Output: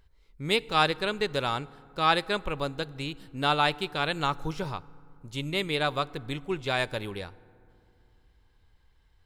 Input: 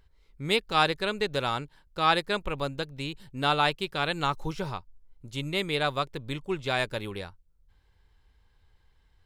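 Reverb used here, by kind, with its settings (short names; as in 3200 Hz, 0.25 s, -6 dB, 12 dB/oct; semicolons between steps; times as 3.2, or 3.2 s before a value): FDN reverb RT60 2.6 s, low-frequency decay 1.4×, high-frequency decay 0.45×, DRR 20 dB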